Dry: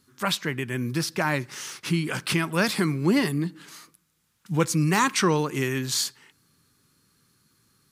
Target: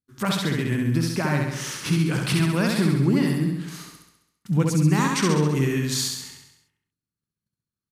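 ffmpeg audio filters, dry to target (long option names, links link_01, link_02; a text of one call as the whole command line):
ffmpeg -i in.wav -filter_complex "[0:a]agate=range=-36dB:threshold=-59dB:ratio=16:detection=peak,lowshelf=frequency=290:gain=11.5,acompressor=threshold=-29dB:ratio=2,asplit=2[link_01][link_02];[link_02]aecho=0:1:67|134|201|268|335|402|469|536|603:0.708|0.418|0.246|0.145|0.0858|0.0506|0.0299|0.0176|0.0104[link_03];[link_01][link_03]amix=inputs=2:normalize=0,aresample=32000,aresample=44100,volume=2.5dB" out.wav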